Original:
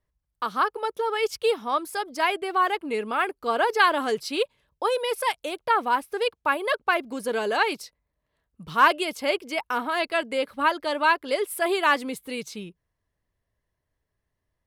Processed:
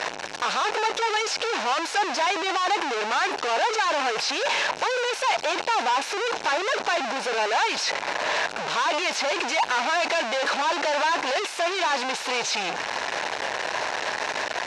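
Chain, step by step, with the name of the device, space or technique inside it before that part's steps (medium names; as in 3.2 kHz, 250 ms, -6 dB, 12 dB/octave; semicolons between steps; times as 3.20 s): home computer beeper (one-bit comparator; cabinet simulation 750–5300 Hz, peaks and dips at 830 Hz +3 dB, 1.2 kHz -7 dB, 2 kHz -5 dB, 3.3 kHz -7 dB, 4.7 kHz -6 dB); trim +8.5 dB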